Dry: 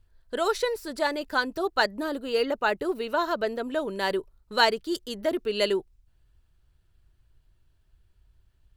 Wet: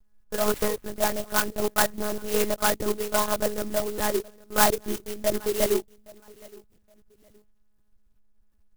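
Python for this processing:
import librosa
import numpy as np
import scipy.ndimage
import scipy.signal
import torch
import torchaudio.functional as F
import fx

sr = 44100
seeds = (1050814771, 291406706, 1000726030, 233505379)

y = fx.echo_feedback(x, sr, ms=818, feedback_pct=20, wet_db=-23.5)
y = fx.lpc_monotone(y, sr, seeds[0], pitch_hz=210.0, order=10)
y = fx.clock_jitter(y, sr, seeds[1], jitter_ms=0.1)
y = y * librosa.db_to_amplitude(2.0)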